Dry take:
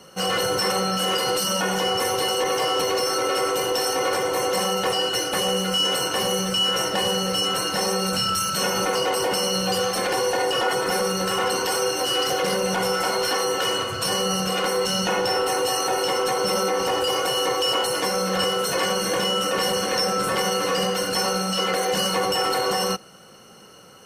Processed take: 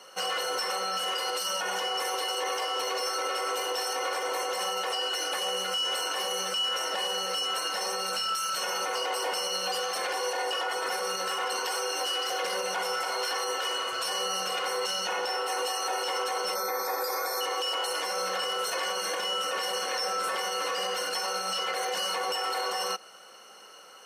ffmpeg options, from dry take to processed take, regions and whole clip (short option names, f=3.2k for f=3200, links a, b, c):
-filter_complex "[0:a]asettb=1/sr,asplit=3[a][b][c];[a]atrim=end=16.554[d];[b]atrim=start=16.55:end=17.41,asetpts=PTS-STARTPTS,afade=t=in:d=0.004:c=qsin,afade=t=out:st=0.856:d=0.004:c=qsin,aeval=exprs='val(0)+0.0355*sin(2*PI*13000*n/s)':c=same,asuperstop=centerf=2900:order=12:qfactor=3.2[e];[c]atrim=start=17.406[f];[d][e]acrossfade=d=0.004:c1=hsin:c2=qsin[g];[g][f]acrossfade=d=0.004:c1=qsin:c2=hsin,highpass=610,highshelf=f=7.8k:g=-5.5,alimiter=limit=-21.5dB:level=0:latency=1:release=95"